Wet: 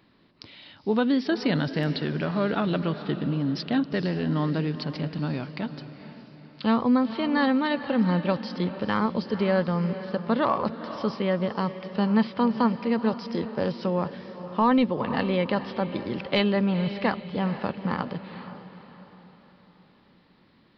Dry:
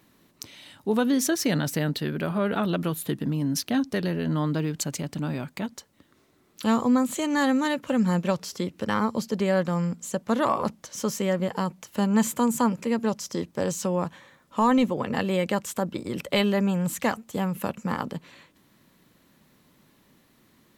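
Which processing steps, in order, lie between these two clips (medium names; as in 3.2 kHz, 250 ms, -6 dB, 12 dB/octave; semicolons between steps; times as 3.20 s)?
echo that smears into a reverb 471 ms, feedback 44%, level -12 dB; resampled via 11.025 kHz; AAC 96 kbps 48 kHz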